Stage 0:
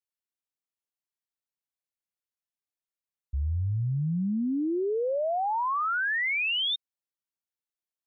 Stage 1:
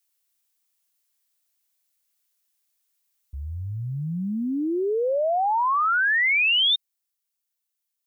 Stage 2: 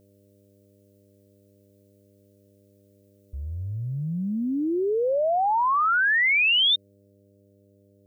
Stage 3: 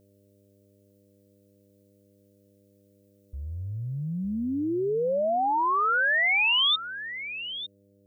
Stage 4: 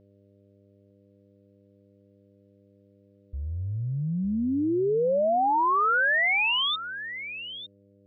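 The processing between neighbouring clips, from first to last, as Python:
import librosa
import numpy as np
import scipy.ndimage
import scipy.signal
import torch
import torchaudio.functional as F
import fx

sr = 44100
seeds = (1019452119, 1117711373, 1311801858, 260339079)

y1 = fx.tilt_eq(x, sr, slope=3.5)
y1 = fx.rider(y1, sr, range_db=4, speed_s=2.0)
y1 = y1 * librosa.db_to_amplitude(4.5)
y2 = fx.dmg_buzz(y1, sr, base_hz=100.0, harmonics=6, level_db=-59.0, tilt_db=-2, odd_only=False)
y3 = y2 + 10.0 ** (-12.5 / 20.0) * np.pad(y2, (int(906 * sr / 1000.0), 0))[:len(y2)]
y3 = y3 * librosa.db_to_amplitude(-2.5)
y4 = fx.air_absorb(y3, sr, metres=320.0)
y4 = y4 * librosa.db_to_amplitude(3.0)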